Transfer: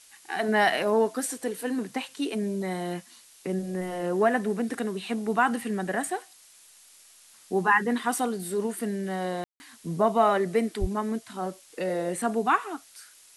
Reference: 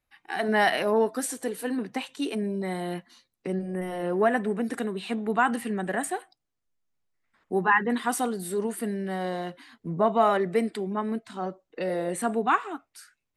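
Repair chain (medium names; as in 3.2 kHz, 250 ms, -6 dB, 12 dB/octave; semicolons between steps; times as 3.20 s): 10.80–10.92 s: high-pass 140 Hz 24 dB/octave; room tone fill 9.44–9.60 s; noise print and reduce 21 dB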